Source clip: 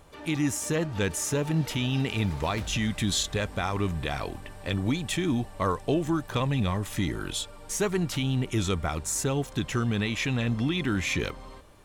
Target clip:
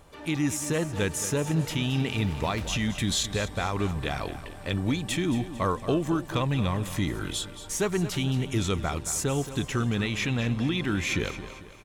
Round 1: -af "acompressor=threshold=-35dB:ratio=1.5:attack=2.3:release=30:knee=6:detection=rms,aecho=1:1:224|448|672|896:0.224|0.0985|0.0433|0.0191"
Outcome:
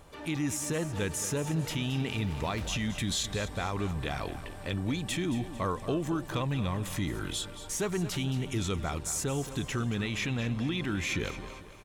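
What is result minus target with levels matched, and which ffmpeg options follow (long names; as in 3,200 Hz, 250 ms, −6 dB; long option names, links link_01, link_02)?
downward compressor: peak gain reduction +5.5 dB
-af "aecho=1:1:224|448|672|896:0.224|0.0985|0.0433|0.0191"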